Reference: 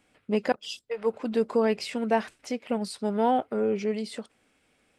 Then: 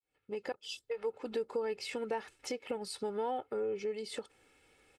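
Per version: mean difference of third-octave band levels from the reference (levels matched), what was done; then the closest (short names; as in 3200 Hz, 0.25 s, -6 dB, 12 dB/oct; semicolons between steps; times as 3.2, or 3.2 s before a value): 3.5 dB: opening faded in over 1.18 s; comb 2.3 ms, depth 60%; compressor 3:1, threshold -37 dBFS, peak gain reduction 15 dB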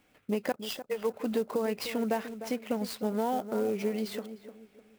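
8.0 dB: compressor, threshold -26 dBFS, peak gain reduction 8.5 dB; tape echo 0.303 s, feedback 42%, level -9.5 dB, low-pass 1100 Hz; clock jitter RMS 0.022 ms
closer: first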